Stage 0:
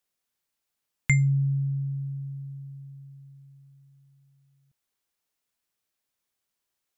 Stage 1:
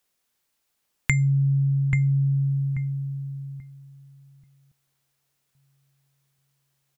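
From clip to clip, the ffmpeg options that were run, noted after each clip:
ffmpeg -i in.wav -filter_complex "[0:a]asplit=2[link_01][link_02];[link_02]adelay=835,lowpass=frequency=1100:poles=1,volume=-4dB,asplit=2[link_03][link_04];[link_04]adelay=835,lowpass=frequency=1100:poles=1,volume=0.28,asplit=2[link_05][link_06];[link_06]adelay=835,lowpass=frequency=1100:poles=1,volume=0.28,asplit=2[link_07][link_08];[link_08]adelay=835,lowpass=frequency=1100:poles=1,volume=0.28[link_09];[link_03][link_05][link_07][link_09]amix=inputs=4:normalize=0[link_10];[link_01][link_10]amix=inputs=2:normalize=0,acompressor=threshold=-26dB:ratio=6,volume=7.5dB" out.wav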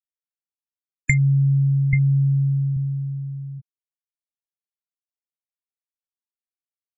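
ffmpeg -i in.wav -af "afftfilt=real='re*gte(hypot(re,im),0.112)':imag='im*gte(hypot(re,im),0.112)':win_size=1024:overlap=0.75,volume=3.5dB" out.wav

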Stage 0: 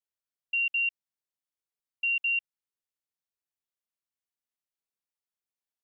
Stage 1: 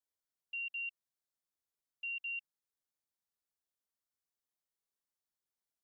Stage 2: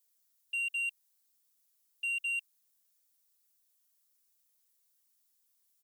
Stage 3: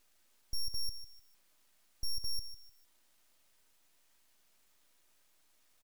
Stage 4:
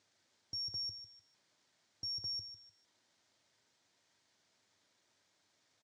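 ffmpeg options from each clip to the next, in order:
ffmpeg -i in.wav -af "equalizer=frequency=2500:width_type=o:width=0.63:gain=-7.5,bandreject=frequency=2700:width=14,volume=-1dB" out.wav
ffmpeg -i in.wav -af "aecho=1:1:3.2:0.65,crystalizer=i=4.5:c=0,asoftclip=type=tanh:threshold=-30dB" out.wav
ffmpeg -i in.wav -filter_complex "[0:a]asplit=2[link_01][link_02];[link_02]adelay=151,lowpass=frequency=4200:poles=1,volume=-12.5dB,asplit=2[link_03][link_04];[link_04]adelay=151,lowpass=frequency=4200:poles=1,volume=0.31,asplit=2[link_05][link_06];[link_06]adelay=151,lowpass=frequency=4200:poles=1,volume=0.31[link_07];[link_01][link_03][link_05][link_07]amix=inputs=4:normalize=0,aeval=exprs='abs(val(0))':channel_layout=same,alimiter=level_in=9dB:limit=-24dB:level=0:latency=1:release=21,volume=-9dB,volume=5dB" out.wav
ffmpeg -i in.wav -af "highpass=frequency=100:width=0.5412,highpass=frequency=100:width=1.3066,equalizer=frequency=100:width_type=q:width=4:gain=7,equalizer=frequency=1200:width_type=q:width=4:gain=-4,equalizer=frequency=2700:width_type=q:width=4:gain=-6,lowpass=frequency=6600:width=0.5412,lowpass=frequency=6600:width=1.3066,volume=1.5dB" out.wav

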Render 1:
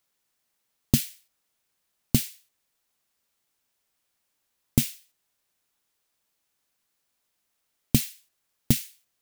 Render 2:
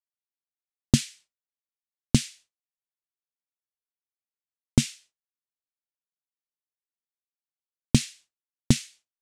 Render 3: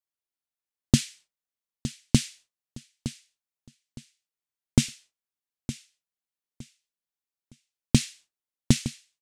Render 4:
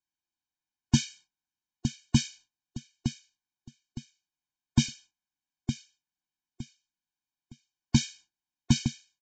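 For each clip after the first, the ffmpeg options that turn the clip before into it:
ffmpeg -i in.wav -af "lowpass=frequency=8400:width=0.5412,lowpass=frequency=8400:width=1.3066,agate=range=-33dB:threshold=-49dB:ratio=3:detection=peak,volume=2.5dB" out.wav
ffmpeg -i in.wav -af "aecho=1:1:913|1826|2739:0.224|0.0627|0.0176" out.wav
ffmpeg -i in.wav -af "aresample=16000,asoftclip=type=tanh:threshold=-16.5dB,aresample=44100,afftfilt=real='re*eq(mod(floor(b*sr/1024/360),2),0)':imag='im*eq(mod(floor(b*sr/1024/360),2),0)':win_size=1024:overlap=0.75,volume=4dB" out.wav

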